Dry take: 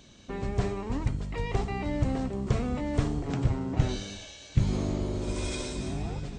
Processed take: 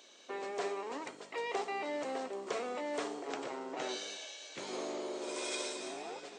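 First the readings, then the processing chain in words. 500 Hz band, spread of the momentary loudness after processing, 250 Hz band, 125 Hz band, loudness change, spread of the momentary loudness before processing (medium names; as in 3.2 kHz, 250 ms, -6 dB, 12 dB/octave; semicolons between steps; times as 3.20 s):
-2.5 dB, 6 LU, -13.5 dB, -37.0 dB, -8.5 dB, 5 LU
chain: high-pass 390 Hz 24 dB/octave; trim -1 dB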